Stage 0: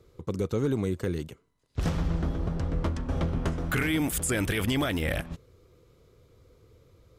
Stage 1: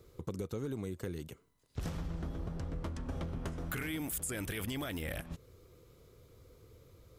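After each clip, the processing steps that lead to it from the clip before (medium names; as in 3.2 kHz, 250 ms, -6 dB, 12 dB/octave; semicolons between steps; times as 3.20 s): treble shelf 10 kHz +11.5 dB; compression 4:1, threshold -36 dBFS, peak gain reduction 12.5 dB; trim -1 dB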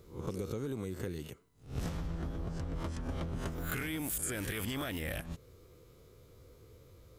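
reverse spectral sustain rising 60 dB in 0.37 s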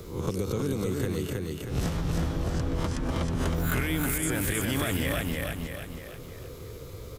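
feedback delay 317 ms, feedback 38%, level -3.5 dB; three bands compressed up and down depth 40%; trim +7.5 dB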